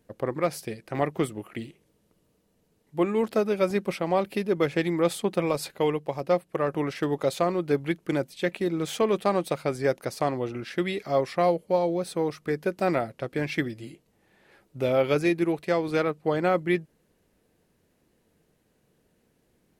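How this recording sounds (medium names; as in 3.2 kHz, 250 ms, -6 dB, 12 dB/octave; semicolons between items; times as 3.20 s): noise floor -69 dBFS; spectral tilt -5.5 dB/octave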